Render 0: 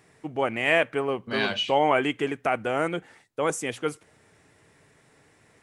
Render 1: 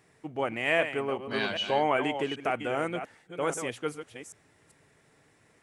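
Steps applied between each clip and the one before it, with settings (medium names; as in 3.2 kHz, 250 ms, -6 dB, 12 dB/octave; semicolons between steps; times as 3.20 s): chunks repeated in reverse 393 ms, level -9 dB; trim -4.5 dB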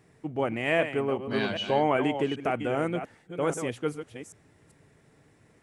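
bass shelf 470 Hz +9.5 dB; trim -2 dB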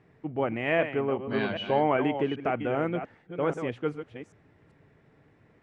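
low-pass 2.8 kHz 12 dB/octave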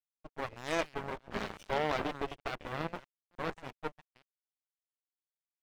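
Chebyshev shaper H 3 -25 dB, 4 -16 dB, 7 -19 dB, 8 -20 dB, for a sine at -12 dBFS; crossover distortion -45 dBFS; trim -6.5 dB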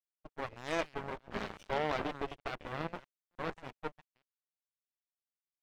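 gate -55 dBFS, range -10 dB; treble shelf 7.9 kHz -7 dB; trim -1.5 dB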